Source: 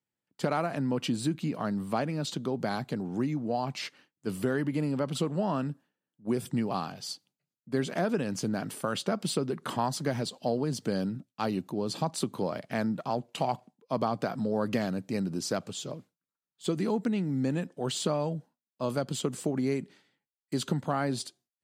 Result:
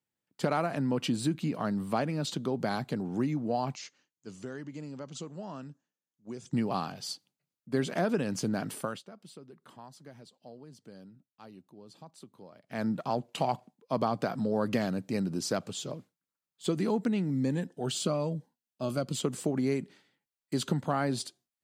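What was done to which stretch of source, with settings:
3.75–6.53 s: four-pole ladder low-pass 7 kHz, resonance 75%
8.79–12.88 s: dip -20 dB, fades 0.23 s
17.30–19.17 s: Shepard-style phaser falling 1.1 Hz

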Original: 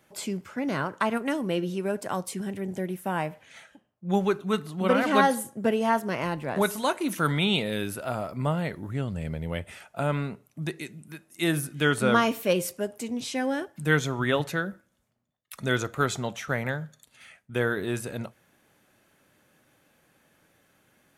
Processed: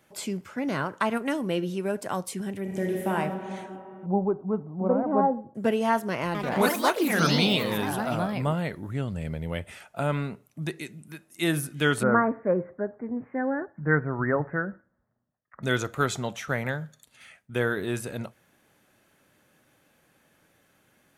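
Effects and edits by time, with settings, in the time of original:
2.61–3.11 s: reverb throw, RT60 3 s, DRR -2 dB
4.06–5.55 s: Chebyshev low-pass 850 Hz, order 3
6.26–8.86 s: ever faster or slower copies 86 ms, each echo +3 st, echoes 3
12.03–15.63 s: steep low-pass 1.9 kHz 72 dB/octave

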